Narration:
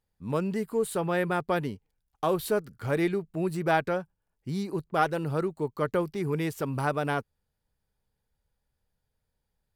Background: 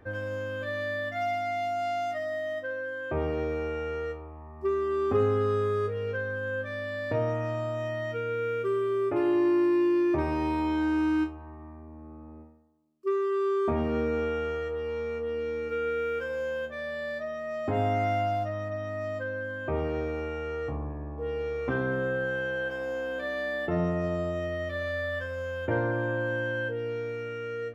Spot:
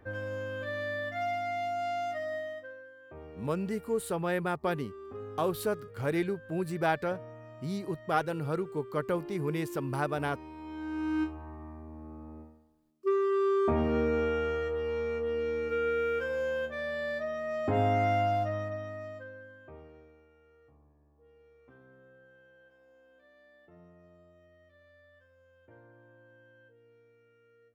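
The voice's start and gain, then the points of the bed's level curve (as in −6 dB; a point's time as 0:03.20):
3.15 s, −3.5 dB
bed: 0:02.36 −3 dB
0:02.95 −18 dB
0:10.54 −18 dB
0:11.36 0 dB
0:18.55 0 dB
0:20.27 −29 dB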